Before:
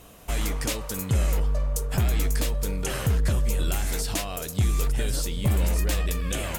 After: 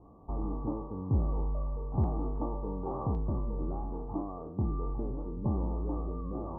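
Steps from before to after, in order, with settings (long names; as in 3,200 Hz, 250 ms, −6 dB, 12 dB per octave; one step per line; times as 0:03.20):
peak hold with a decay on every bin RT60 0.61 s
Chebyshev low-pass with heavy ripple 1,200 Hz, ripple 9 dB
parametric band 86 Hz +6 dB 1.3 octaves, from 0:02.04 840 Hz, from 0:03.15 4,100 Hz
level −2 dB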